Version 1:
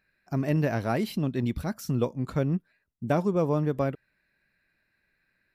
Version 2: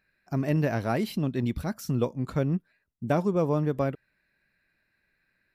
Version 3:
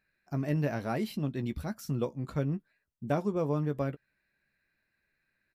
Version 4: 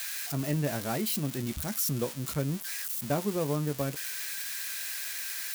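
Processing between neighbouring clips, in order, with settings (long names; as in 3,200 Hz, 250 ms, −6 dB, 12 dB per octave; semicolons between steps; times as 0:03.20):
no processing that can be heard
double-tracking delay 14 ms −10 dB; level −5.5 dB
spike at every zero crossing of −24.5 dBFS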